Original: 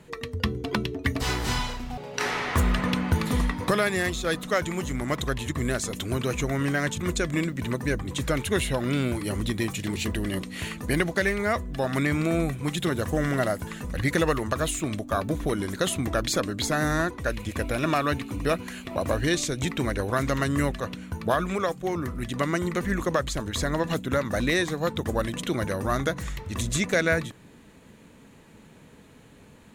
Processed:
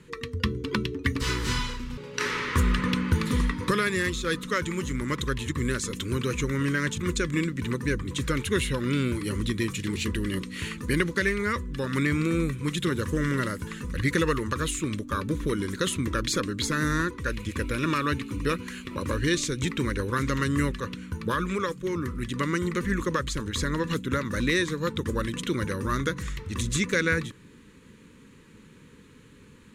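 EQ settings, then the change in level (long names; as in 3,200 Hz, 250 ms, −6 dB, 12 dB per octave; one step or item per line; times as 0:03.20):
Butterworth band-reject 710 Hz, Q 1.5
Bessel low-pass filter 11,000 Hz, order 2
0.0 dB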